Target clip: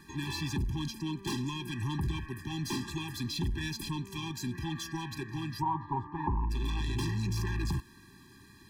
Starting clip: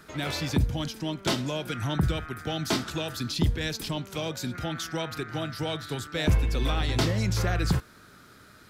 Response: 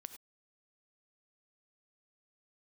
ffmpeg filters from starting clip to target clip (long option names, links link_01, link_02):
-filter_complex "[0:a]asoftclip=type=tanh:threshold=-28dB,asplit=3[link_01][link_02][link_03];[link_01]afade=type=out:start_time=5.61:duration=0.02[link_04];[link_02]lowpass=frequency=950:width_type=q:width=8.7,afade=type=in:start_time=5.61:duration=0.02,afade=type=out:start_time=6.49:duration=0.02[link_05];[link_03]afade=type=in:start_time=6.49:duration=0.02[link_06];[link_04][link_05][link_06]amix=inputs=3:normalize=0,afftfilt=real='re*eq(mod(floor(b*sr/1024/390),2),0)':imag='im*eq(mod(floor(b*sr/1024/390),2),0)':win_size=1024:overlap=0.75"